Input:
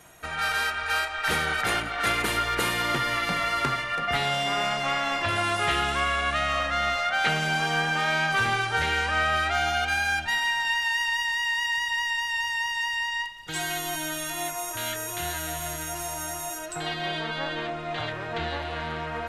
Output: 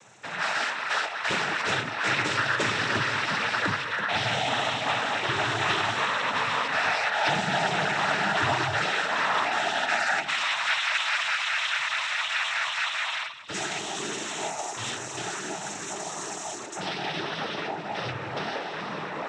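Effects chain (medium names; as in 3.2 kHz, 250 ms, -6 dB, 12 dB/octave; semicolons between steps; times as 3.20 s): on a send at -10 dB: reverberation, pre-delay 3 ms; on the sum: noise-vocoded speech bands 12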